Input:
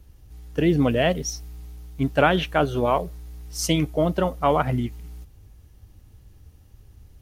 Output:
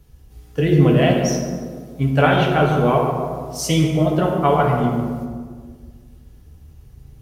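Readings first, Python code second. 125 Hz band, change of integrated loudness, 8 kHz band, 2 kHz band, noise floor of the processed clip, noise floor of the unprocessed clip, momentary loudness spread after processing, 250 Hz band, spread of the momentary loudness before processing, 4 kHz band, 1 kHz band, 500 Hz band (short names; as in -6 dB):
+8.5 dB, +5.0 dB, +2.5 dB, +3.5 dB, -47 dBFS, -53 dBFS, 15 LU, +5.5 dB, 18 LU, +2.5 dB, +5.0 dB, +4.5 dB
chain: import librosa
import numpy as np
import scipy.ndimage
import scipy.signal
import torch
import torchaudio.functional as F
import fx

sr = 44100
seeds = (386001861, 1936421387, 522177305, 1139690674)

y = fx.echo_tape(x, sr, ms=144, feedback_pct=66, wet_db=-4.5, lp_hz=1100.0, drive_db=8.0, wow_cents=32)
y = fx.rev_fdn(y, sr, rt60_s=1.4, lf_ratio=1.45, hf_ratio=0.65, size_ms=41.0, drr_db=-0.5)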